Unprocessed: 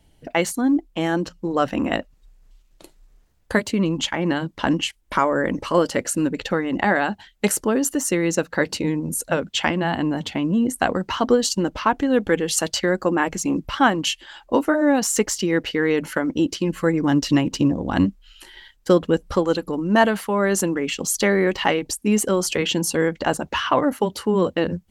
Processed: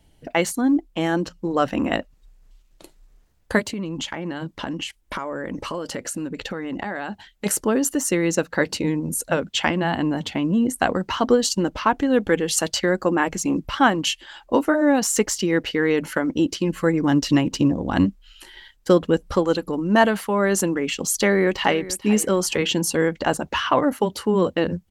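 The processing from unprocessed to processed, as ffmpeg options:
ffmpeg -i in.wav -filter_complex "[0:a]asplit=3[link_01][link_02][link_03];[link_01]afade=type=out:start_time=3.63:duration=0.02[link_04];[link_02]acompressor=threshold=-25dB:ratio=6:attack=3.2:release=140:knee=1:detection=peak,afade=type=in:start_time=3.63:duration=0.02,afade=type=out:start_time=7.45:duration=0.02[link_05];[link_03]afade=type=in:start_time=7.45:duration=0.02[link_06];[link_04][link_05][link_06]amix=inputs=3:normalize=0,asplit=2[link_07][link_08];[link_08]afade=type=in:start_time=21.2:duration=0.01,afade=type=out:start_time=21.85:duration=0.01,aecho=0:1:440|880|1320:0.149624|0.0448871|0.0134661[link_09];[link_07][link_09]amix=inputs=2:normalize=0" out.wav

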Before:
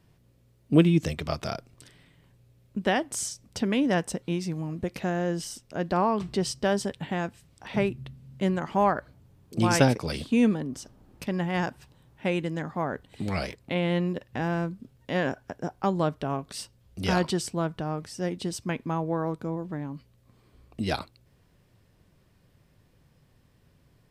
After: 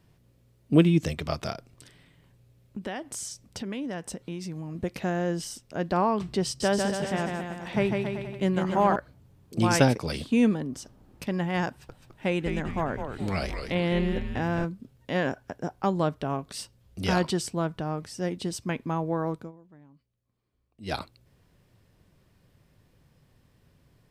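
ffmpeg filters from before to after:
ffmpeg -i in.wav -filter_complex "[0:a]asettb=1/sr,asplit=3[link_01][link_02][link_03];[link_01]atrim=end=1.514[link_04];[link_02]atrim=start=1.51:end=4.75,asetpts=PTS-STARTPTS,afade=type=in:duration=0.004:curve=qsin,afade=type=out:start_time=3.236:duration=0.004:curve=qsin,acompressor=threshold=-34dB:ratio=2.5:attack=3.2:release=140:knee=1:detection=peak[link_05];[link_03]atrim=start=4.746[link_06];[link_04][link_05]acrossfade=duration=0.004:curve1=hsin:curve2=qsin[link_07];[link_07][link_06]acrossfade=duration=0.004:curve1=qsin:curve2=hsin,asettb=1/sr,asplit=3[link_08][link_09][link_10];[link_08]atrim=end=6.454[link_11];[link_09]atrim=start=6.45:end=8.96,asetpts=PTS-STARTPTS,afade=type=in:duration=0.004:curve=qsin,afade=type=out:start_time=2.506:duration=0.004:curve=qsin,aecho=1:1:150|277.5|385.9|478|556.3:0.631|0.398|0.251|0.158|0.1,atrim=end_sample=110691[link_12];[link_10]atrim=start=8.956[link_13];[link_11][link_12]acrossfade=duration=0.004:curve1=hsin:curve2=qsin[link_14];[link_14][link_13]acrossfade=duration=0.004:curve1=qsin:curve2=hsin,asettb=1/sr,asplit=3[link_15][link_16][link_17];[link_15]atrim=end=11.684[link_18];[link_16]atrim=start=11.68:end=14.65,asetpts=PTS-STARTPTS,afade=type=in:duration=0.004:curve=qsin,afade=type=out:start_time=2.966:duration=0.004:curve=qsin,asplit=7[link_19][link_20][link_21][link_22][link_23][link_24][link_25];[link_20]adelay=209,afreqshift=-140,volume=-6dB[link_26];[link_21]adelay=418,afreqshift=-280,volume=-12.6dB[link_27];[link_22]adelay=627,afreqshift=-420,volume=-19.1dB[link_28];[link_23]adelay=836,afreqshift=-560,volume=-25.7dB[link_29];[link_24]adelay=1045,afreqshift=-700,volume=-32.2dB[link_30];[link_25]adelay=1254,afreqshift=-840,volume=-38.8dB[link_31];[link_19][link_26][link_27][link_28][link_29][link_30][link_31]amix=inputs=7:normalize=0,atrim=end_sample=130977[link_32];[link_17]atrim=start=14.646[link_33];[link_18][link_32]acrossfade=duration=0.004:curve1=hsin:curve2=qsin[link_34];[link_34][link_33]acrossfade=duration=0.004:curve1=qsin:curve2=hsin,asplit=3[link_35][link_36][link_37];[link_35]atrim=end=19.52,asetpts=PTS-STARTPTS,afade=type=out:start_time=19.36:duration=0.16:silence=0.105925[link_38];[link_36]atrim=start=19.52:end=20.81,asetpts=PTS-STARTPTS,volume=-19.5dB[link_39];[link_37]atrim=start=20.81,asetpts=PTS-STARTPTS,afade=type=in:duration=0.16:silence=0.105925[link_40];[link_38][link_39][link_40]concat=n=3:v=0:a=1" out.wav

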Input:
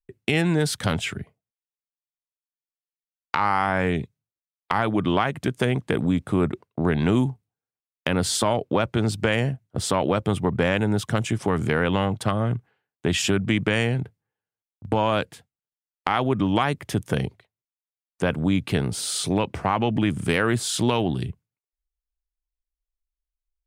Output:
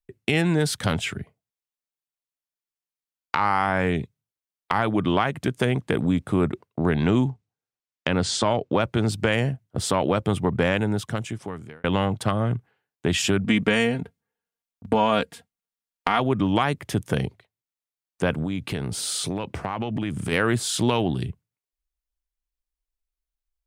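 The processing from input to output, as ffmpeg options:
ffmpeg -i in.wav -filter_complex "[0:a]asettb=1/sr,asplit=3[link_01][link_02][link_03];[link_01]atrim=end=7.014[link_04];[link_02]atrim=start=7.01:end=8.72,asetpts=PTS-STARTPTS,afade=type=in:duration=0.004:curve=qsin,afade=type=out:start_time=1.706:duration=0.004:curve=qsin,lowpass=frequency=7500:width=0.5412,lowpass=frequency=7500:width=1.3066[link_05];[link_03]atrim=start=8.716[link_06];[link_04][link_05]acrossfade=duration=0.004:curve1=hsin:curve2=qsin[link_07];[link_07][link_06]acrossfade=duration=0.004:curve1=qsin:curve2=hsin,asettb=1/sr,asplit=3[link_08][link_09][link_10];[link_08]atrim=end=13.444[link_11];[link_09]atrim=start=13.44:end=16.2,asetpts=PTS-STARTPTS,afade=type=in:duration=0.004:curve=qsin,afade=type=out:start_time=2.756:duration=0.004:curve=qsin,aecho=1:1:4.3:0.65,atrim=end_sample=121716[link_12];[link_10]atrim=start=16.196[link_13];[link_11][link_12]acrossfade=duration=0.004:curve1=hsin:curve2=qsin[link_14];[link_14][link_13]acrossfade=duration=0.004:curve1=qsin:curve2=hsin,asplit=3[link_15][link_16][link_17];[link_15]afade=type=out:start_time=18.42:duration=0.02[link_18];[link_16]acompressor=threshold=-23dB:ratio=6:attack=3.2:release=140:knee=1:detection=peak,afade=type=in:start_time=18.42:duration=0.02,afade=type=out:start_time=20.31:duration=0.02[link_19];[link_17]afade=type=in:start_time=20.31:duration=0.02[link_20];[link_18][link_19][link_20]amix=inputs=3:normalize=0,asplit=2[link_21][link_22];[link_21]atrim=end=11.84,asetpts=PTS-STARTPTS,afade=type=out:start_time=10.69:duration=1.15[link_23];[link_22]atrim=start=11.84,asetpts=PTS-STARTPTS,afade=type=in:duration=0.004:curve=hsin[link_24];[link_23][link_24]concat=n=2:v=0:a=1" out.wav

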